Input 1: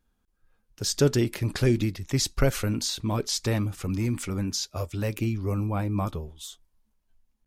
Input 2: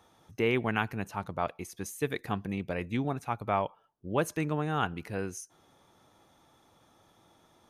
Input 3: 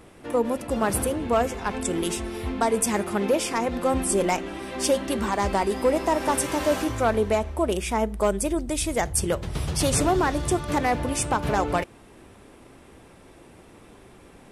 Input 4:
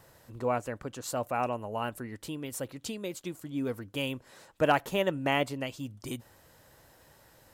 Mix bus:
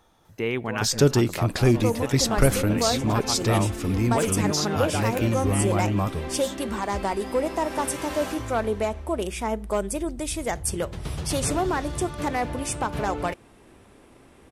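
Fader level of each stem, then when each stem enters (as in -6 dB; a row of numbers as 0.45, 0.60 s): +3.0, +0.5, -3.0, -6.5 dB; 0.00, 0.00, 1.50, 0.25 s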